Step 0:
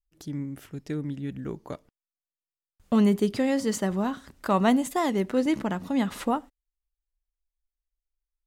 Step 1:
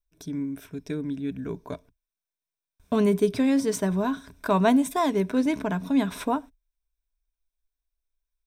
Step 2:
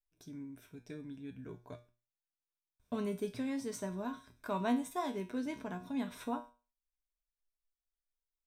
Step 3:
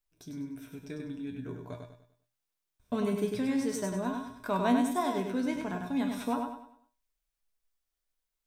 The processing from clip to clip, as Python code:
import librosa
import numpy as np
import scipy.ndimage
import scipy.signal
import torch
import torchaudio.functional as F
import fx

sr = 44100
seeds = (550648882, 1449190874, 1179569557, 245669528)

y1 = fx.ripple_eq(x, sr, per_octave=1.6, db=10)
y2 = fx.comb_fb(y1, sr, f0_hz=120.0, decay_s=0.33, harmonics='all', damping=0.0, mix_pct=80)
y2 = y2 * 10.0 ** (-4.5 / 20.0)
y3 = fx.echo_feedback(y2, sr, ms=99, feedback_pct=37, wet_db=-5.0)
y3 = y3 * 10.0 ** (5.5 / 20.0)